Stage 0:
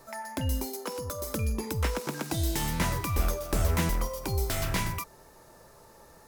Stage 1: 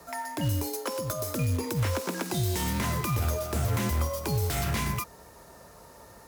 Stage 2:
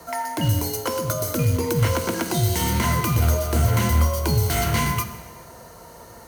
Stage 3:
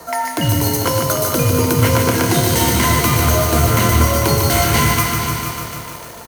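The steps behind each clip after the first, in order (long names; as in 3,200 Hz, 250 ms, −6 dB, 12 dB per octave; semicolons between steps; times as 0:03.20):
brickwall limiter −23 dBFS, peak gain reduction 9 dB; floating-point word with a short mantissa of 2 bits; frequency shifter +34 Hz; level +3.5 dB
EQ curve with evenly spaced ripples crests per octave 1.9, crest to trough 7 dB; dense smooth reverb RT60 1.4 s, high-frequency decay 0.95×, DRR 9 dB; level +6 dB
bass and treble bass −4 dB, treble 0 dB; repeating echo 475 ms, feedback 25%, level −9.5 dB; feedback echo at a low word length 149 ms, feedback 80%, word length 7 bits, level −5 dB; level +7 dB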